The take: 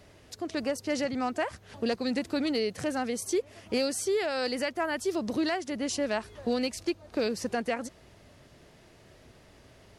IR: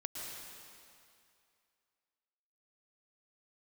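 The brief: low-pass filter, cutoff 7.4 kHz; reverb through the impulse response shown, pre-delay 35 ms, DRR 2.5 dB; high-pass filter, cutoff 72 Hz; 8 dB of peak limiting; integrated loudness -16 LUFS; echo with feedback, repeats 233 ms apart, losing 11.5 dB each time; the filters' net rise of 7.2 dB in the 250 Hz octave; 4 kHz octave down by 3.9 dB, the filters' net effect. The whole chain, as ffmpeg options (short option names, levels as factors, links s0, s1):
-filter_complex "[0:a]highpass=72,lowpass=7400,equalizer=f=250:t=o:g=8.5,equalizer=f=4000:t=o:g=-4.5,alimiter=limit=0.0794:level=0:latency=1,aecho=1:1:233|466|699:0.266|0.0718|0.0194,asplit=2[s0][s1];[1:a]atrim=start_sample=2205,adelay=35[s2];[s1][s2]afir=irnorm=-1:irlink=0,volume=0.75[s3];[s0][s3]amix=inputs=2:normalize=0,volume=4.22"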